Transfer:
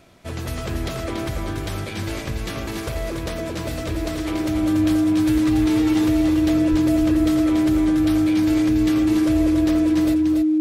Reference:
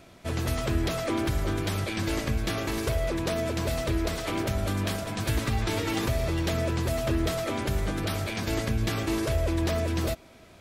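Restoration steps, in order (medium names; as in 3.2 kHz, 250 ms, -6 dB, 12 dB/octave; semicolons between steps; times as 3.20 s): band-stop 310 Hz, Q 30; 6.70–6.82 s: high-pass 140 Hz 24 dB/octave; inverse comb 284 ms -5.5 dB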